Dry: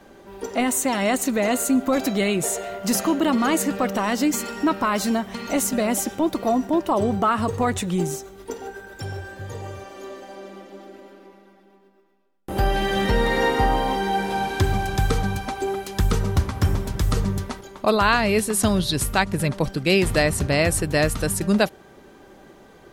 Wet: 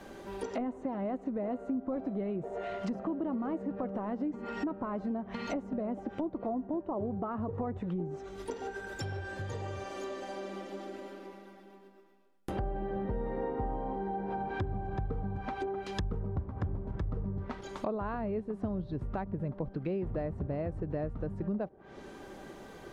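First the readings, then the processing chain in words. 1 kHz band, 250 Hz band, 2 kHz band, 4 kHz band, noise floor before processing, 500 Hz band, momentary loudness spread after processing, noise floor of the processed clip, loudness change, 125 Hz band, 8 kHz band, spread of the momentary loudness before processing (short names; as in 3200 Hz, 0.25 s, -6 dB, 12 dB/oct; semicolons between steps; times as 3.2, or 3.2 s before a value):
-15.0 dB, -12.0 dB, -20.0 dB, -23.5 dB, -51 dBFS, -12.5 dB, 7 LU, -53 dBFS, -14.5 dB, -12.0 dB, -31.5 dB, 15 LU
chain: treble ducked by the level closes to 740 Hz, closed at -20 dBFS; compressor 3:1, threshold -36 dBFS, peak gain reduction 16 dB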